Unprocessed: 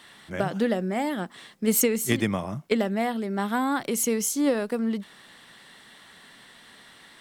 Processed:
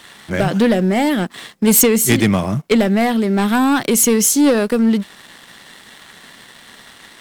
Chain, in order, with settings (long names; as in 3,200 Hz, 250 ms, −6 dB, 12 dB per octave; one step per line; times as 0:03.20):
leveller curve on the samples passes 2
dynamic equaliser 860 Hz, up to −4 dB, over −33 dBFS, Q 0.8
level +6.5 dB